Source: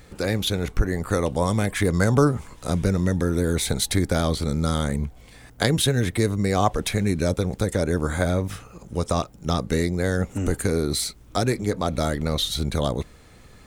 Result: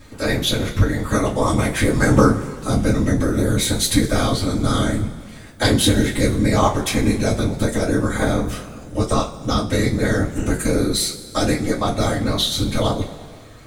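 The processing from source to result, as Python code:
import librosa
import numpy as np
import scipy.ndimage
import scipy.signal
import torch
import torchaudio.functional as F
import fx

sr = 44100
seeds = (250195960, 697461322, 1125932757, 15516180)

y = fx.whisperise(x, sr, seeds[0])
y = fx.rev_double_slope(y, sr, seeds[1], early_s=0.22, late_s=1.9, knee_db=-20, drr_db=-5.0)
y = F.gain(torch.from_numpy(y), -1.0).numpy()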